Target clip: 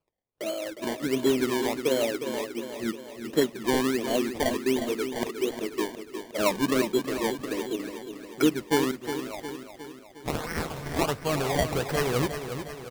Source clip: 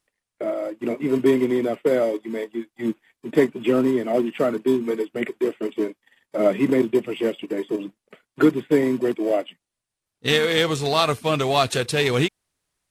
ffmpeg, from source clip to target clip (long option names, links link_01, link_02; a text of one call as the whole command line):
ffmpeg -i in.wav -filter_complex "[0:a]asettb=1/sr,asplit=3[link_01][link_02][link_03];[link_01]atrim=end=8.914[link_04];[link_02]atrim=start=8.91:end=10.99,asetpts=PTS-STARTPTS,afade=type=in:duration=0.004:curve=qsin,afade=type=out:start_time=2.076:duration=0.004:curve=qsin,equalizer=frequency=420:width_type=o:width=2.4:gain=-14[link_05];[link_03]atrim=start=10.986[link_06];[link_04][link_05]acrossfade=duration=0.004:curve1=hsin:curve2=qsin[link_07];[link_07][link_06]acrossfade=duration=0.004:curve1=qsin:curve2=hsin,acrusher=samples=23:mix=1:aa=0.000001:lfo=1:lforange=23:lforate=1.4,aecho=1:1:359|718|1077|1436|1795|2154:0.355|0.195|0.107|0.059|0.0325|0.0179,volume=-6dB" out.wav